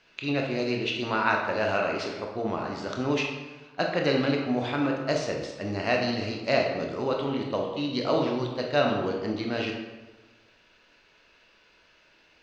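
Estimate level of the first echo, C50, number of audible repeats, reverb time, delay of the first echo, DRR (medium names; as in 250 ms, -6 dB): no echo, 3.5 dB, no echo, 1.2 s, no echo, 0.5 dB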